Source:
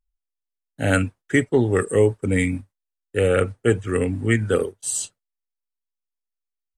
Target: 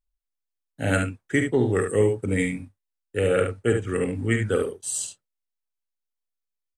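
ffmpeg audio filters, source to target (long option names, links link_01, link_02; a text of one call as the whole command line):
ffmpeg -i in.wav -af "aecho=1:1:48|72:0.335|0.447,volume=-4dB" out.wav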